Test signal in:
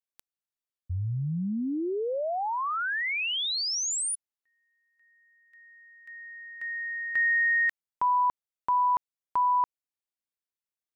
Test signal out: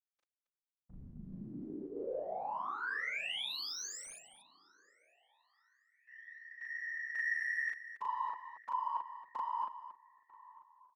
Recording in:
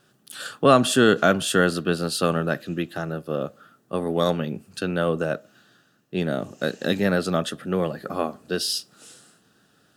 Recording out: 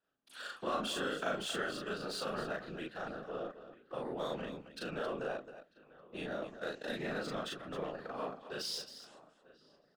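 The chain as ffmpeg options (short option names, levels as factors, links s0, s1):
-filter_complex "[0:a]lowshelf=f=190:g=-11.5,agate=range=0.251:threshold=0.00398:ratio=16:release=51:detection=rms,acompressor=threshold=0.0316:ratio=3:attack=21:release=38:knee=6,asplit=2[s0][s1];[s1]adelay=945,lowpass=f=3700:p=1,volume=0.1,asplit=2[s2][s3];[s3]adelay=945,lowpass=f=3700:p=1,volume=0.38,asplit=2[s4][s5];[s5]adelay=945,lowpass=f=3700:p=1,volume=0.38[s6];[s2][s4][s6]amix=inputs=3:normalize=0[s7];[s0][s7]amix=inputs=2:normalize=0,adynamicsmooth=sensitivity=4.5:basefreq=3600,bandreject=f=360:w=12,afftfilt=real='hypot(re,im)*cos(2*PI*random(0))':imag='hypot(re,im)*sin(2*PI*random(1))':win_size=512:overlap=0.75,equalizer=f=90:t=o:w=1.2:g=-10.5,asplit=2[s8][s9];[s9]aecho=0:1:37.9|268.2:1|0.316[s10];[s8][s10]amix=inputs=2:normalize=0,volume=0.596"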